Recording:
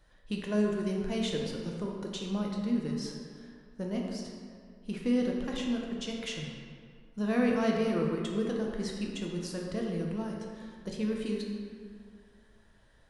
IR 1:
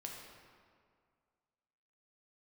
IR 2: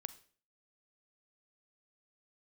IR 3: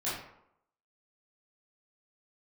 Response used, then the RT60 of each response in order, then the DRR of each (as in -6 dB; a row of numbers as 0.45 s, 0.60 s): 1; 2.1 s, 0.45 s, 0.75 s; -1.0 dB, 13.5 dB, -11.0 dB